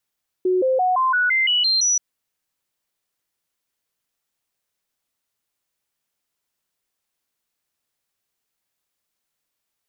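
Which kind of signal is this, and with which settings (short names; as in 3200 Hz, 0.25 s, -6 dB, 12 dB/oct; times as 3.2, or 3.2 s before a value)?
stepped sine 368 Hz up, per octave 2, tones 9, 0.17 s, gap 0.00 s -15.5 dBFS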